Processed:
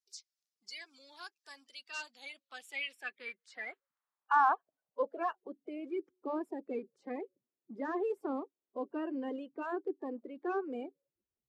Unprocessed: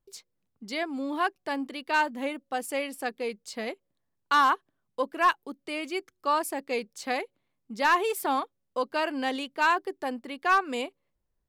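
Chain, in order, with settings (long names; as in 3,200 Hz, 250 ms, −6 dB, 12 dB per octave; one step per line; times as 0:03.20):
spectral magnitudes quantised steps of 30 dB
band-pass filter sweep 5,400 Hz → 350 Hz, 0:01.91–0:05.69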